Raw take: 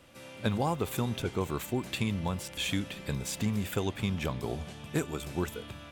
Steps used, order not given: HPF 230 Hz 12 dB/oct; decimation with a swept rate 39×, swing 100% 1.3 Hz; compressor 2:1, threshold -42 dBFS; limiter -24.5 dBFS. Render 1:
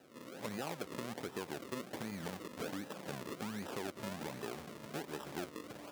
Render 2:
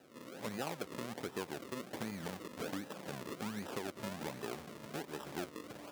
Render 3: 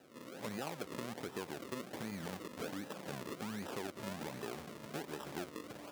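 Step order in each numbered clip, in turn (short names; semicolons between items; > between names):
decimation with a swept rate > limiter > HPF > compressor; decimation with a swept rate > HPF > compressor > limiter; limiter > decimation with a swept rate > HPF > compressor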